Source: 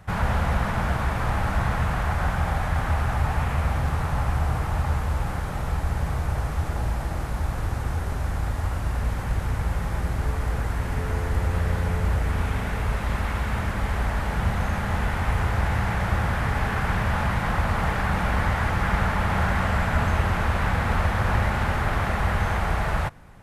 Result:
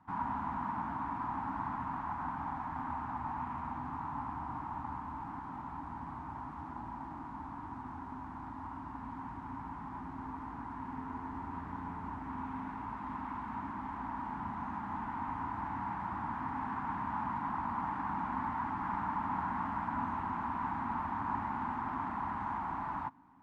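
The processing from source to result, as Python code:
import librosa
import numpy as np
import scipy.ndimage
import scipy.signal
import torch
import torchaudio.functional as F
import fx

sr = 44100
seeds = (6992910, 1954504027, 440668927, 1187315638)

y = fx.cvsd(x, sr, bps=64000)
y = fx.double_bandpass(y, sr, hz=510.0, octaves=1.8)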